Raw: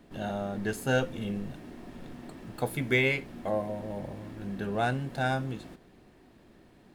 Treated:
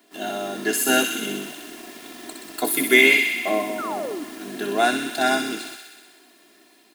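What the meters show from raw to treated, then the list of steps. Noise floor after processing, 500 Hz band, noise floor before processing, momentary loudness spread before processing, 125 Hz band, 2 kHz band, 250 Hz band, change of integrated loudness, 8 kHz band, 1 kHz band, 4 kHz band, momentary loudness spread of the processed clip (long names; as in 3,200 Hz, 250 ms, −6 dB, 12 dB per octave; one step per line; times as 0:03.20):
−55 dBFS, +7.5 dB, −58 dBFS, 18 LU, below −10 dB, +12.5 dB, +7.0 dB, +10.5 dB, +21.0 dB, +9.5 dB, +15.5 dB, 23 LU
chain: sub-octave generator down 2 octaves, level +4 dB
elliptic high-pass filter 160 Hz
spectral tilt +3.5 dB per octave
comb filter 2.9 ms, depth 75%
dynamic equaliser 250 Hz, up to +7 dB, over −48 dBFS, Q 0.95
automatic gain control gain up to 3 dB
in parallel at −6 dB: bit reduction 7 bits
on the sum: sound drawn into the spectrogram fall, 0:03.78–0:04.24, 270–1,500 Hz −30 dBFS
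delay with a high-pass on its return 63 ms, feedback 75%, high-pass 2,000 Hz, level −4 dB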